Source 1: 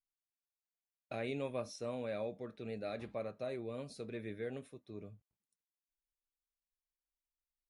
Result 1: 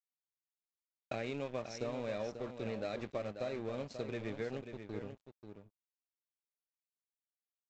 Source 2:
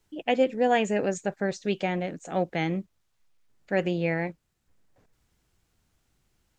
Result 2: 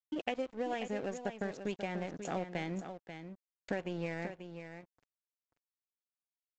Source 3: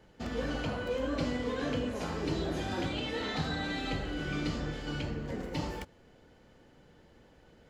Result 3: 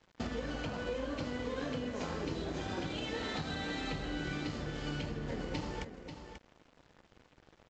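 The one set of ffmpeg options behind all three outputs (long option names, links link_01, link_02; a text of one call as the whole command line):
ffmpeg -i in.wav -af "acompressor=threshold=-41dB:ratio=8,aresample=16000,aeval=exprs='sgn(val(0))*max(abs(val(0))-0.00158,0)':channel_layout=same,aresample=44100,aecho=1:1:538:0.355,volume=7.5dB" out.wav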